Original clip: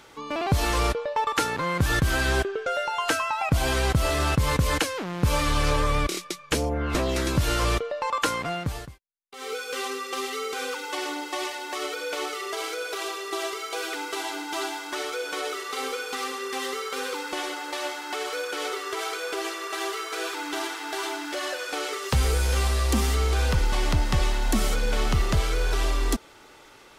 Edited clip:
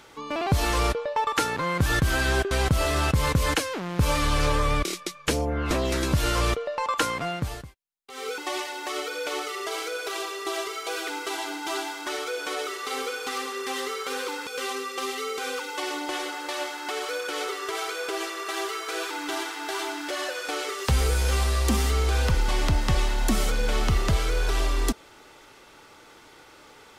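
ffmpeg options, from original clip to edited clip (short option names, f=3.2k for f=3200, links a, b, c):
-filter_complex "[0:a]asplit=5[a][b][c][d][e];[a]atrim=end=2.512[f];[b]atrim=start=3.748:end=9.622[g];[c]atrim=start=11.238:end=17.332[h];[d]atrim=start=9.618:end=11.242[i];[e]atrim=start=17.328[j];[f][g]acrossfade=d=0.004:c1=hsin:c2=hsin[k];[k][h]acrossfade=d=0.004:c1=hsin:c2=hsin[l];[l][i]acrossfade=d=0.004:c1=hsin:c2=hsin[m];[m][j]acrossfade=d=0.004:c1=hsin:c2=hsin"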